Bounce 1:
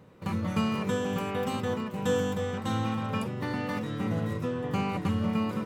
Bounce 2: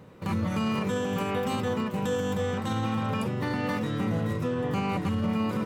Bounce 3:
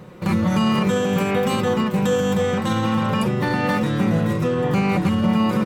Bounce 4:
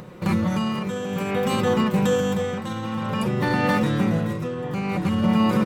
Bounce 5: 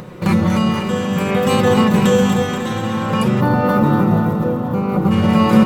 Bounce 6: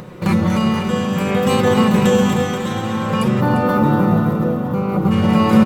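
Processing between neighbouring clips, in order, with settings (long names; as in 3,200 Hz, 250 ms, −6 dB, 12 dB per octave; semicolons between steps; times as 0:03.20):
brickwall limiter −24.5 dBFS, peak gain reduction 8.5 dB; level +4.5 dB
comb filter 5.6 ms, depth 42%; level +8 dB
upward compression, threshold −40 dBFS; amplitude tremolo 0.54 Hz, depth 63%
delay that swaps between a low-pass and a high-pass 120 ms, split 810 Hz, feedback 78%, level −5.5 dB; gain on a spectral selection 0:03.41–0:05.11, 1,500–11,000 Hz −12 dB; level +6.5 dB
single-tap delay 347 ms −11 dB; level −1 dB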